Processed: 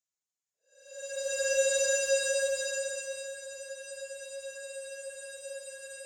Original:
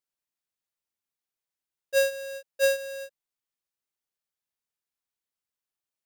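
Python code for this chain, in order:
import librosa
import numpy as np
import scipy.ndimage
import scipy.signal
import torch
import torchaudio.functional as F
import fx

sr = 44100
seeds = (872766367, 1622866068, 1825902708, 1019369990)

p1 = fx.filter_sweep_lowpass(x, sr, from_hz=3900.0, to_hz=9100.0, start_s=1.09, end_s=3.2, q=5.8)
p2 = 10.0 ** (-28.5 / 20.0) * np.tanh(p1 / 10.0 ** (-28.5 / 20.0))
p3 = p1 + F.gain(torch.from_numpy(p2), -11.5).numpy()
p4 = fx.paulstretch(p3, sr, seeds[0], factor=12.0, window_s=0.1, from_s=2.5)
y = F.gain(torch.from_numpy(p4), -9.0).numpy()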